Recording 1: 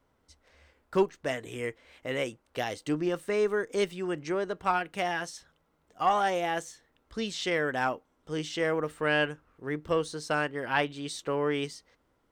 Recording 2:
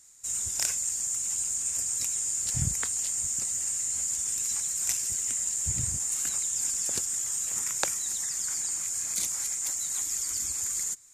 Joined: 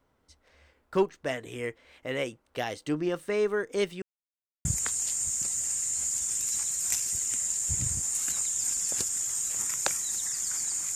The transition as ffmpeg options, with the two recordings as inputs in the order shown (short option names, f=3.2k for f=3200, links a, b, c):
-filter_complex "[0:a]apad=whole_dur=10.95,atrim=end=10.95,asplit=2[a][b];[a]atrim=end=4.02,asetpts=PTS-STARTPTS,afade=t=out:st=4.016:d=0.004:c=hsin[c];[b]atrim=start=4.02:end=4.65,asetpts=PTS-STARTPTS,volume=0[d];[1:a]atrim=start=2.62:end=8.92,asetpts=PTS-STARTPTS,afade=t=in:d=0.004:c=hsin[e];[c][d][e]concat=n=3:v=0:a=1"